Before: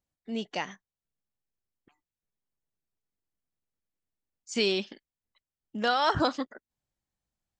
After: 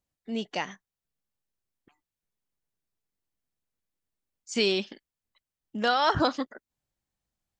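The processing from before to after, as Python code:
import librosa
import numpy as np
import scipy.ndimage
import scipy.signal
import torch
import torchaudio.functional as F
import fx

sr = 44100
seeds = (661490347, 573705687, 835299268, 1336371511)

y = fx.notch(x, sr, hz=7800.0, q=5.3, at=(5.91, 6.37))
y = y * librosa.db_to_amplitude(1.5)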